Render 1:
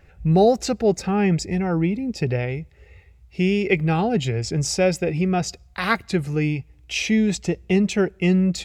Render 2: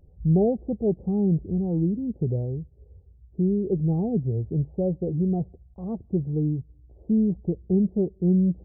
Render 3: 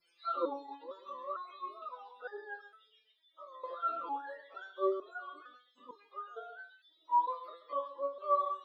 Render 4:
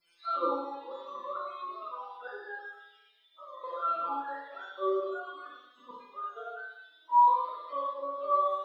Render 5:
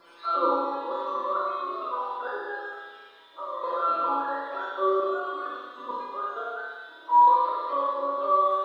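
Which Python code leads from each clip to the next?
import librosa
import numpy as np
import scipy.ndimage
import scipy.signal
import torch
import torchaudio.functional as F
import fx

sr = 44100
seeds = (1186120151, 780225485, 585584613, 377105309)

y1 = scipy.ndimage.gaussian_filter1d(x, 17.0, mode='constant')
y1 = F.gain(torch.from_numpy(y1), -1.0).numpy()
y2 = fx.octave_mirror(y1, sr, pivot_hz=460.0)
y2 = y2 + 10.0 ** (-13.0 / 20.0) * np.pad(y2, (int(133 * sr / 1000.0), 0))[:len(y2)]
y2 = fx.resonator_held(y2, sr, hz=2.2, low_hz=170.0, high_hz=410.0)
y3 = fx.peak_eq(y2, sr, hz=410.0, db=-4.0, octaves=0.54)
y3 = fx.rev_schroeder(y3, sr, rt60_s=0.82, comb_ms=32, drr_db=-2.5)
y3 = F.gain(torch.from_numpy(y3), 1.0).numpy()
y4 = fx.bin_compress(y3, sr, power=0.6)
y4 = F.gain(torch.from_numpy(y4), 3.5).numpy()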